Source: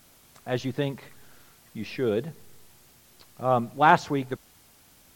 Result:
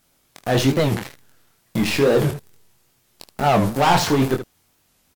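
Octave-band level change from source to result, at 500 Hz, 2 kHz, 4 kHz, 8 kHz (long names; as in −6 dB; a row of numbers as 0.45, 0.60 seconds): +8.0, +4.5, +13.0, +16.0 decibels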